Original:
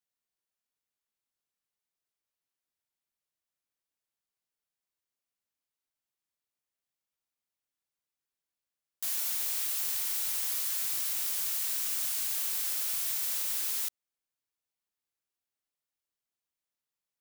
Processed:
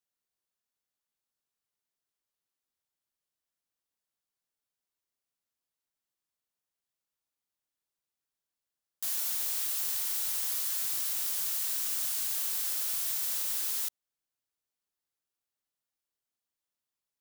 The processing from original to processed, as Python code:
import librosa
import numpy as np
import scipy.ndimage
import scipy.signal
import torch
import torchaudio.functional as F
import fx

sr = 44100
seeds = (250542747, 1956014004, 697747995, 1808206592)

y = fx.peak_eq(x, sr, hz=2300.0, db=-3.0, octaves=0.56)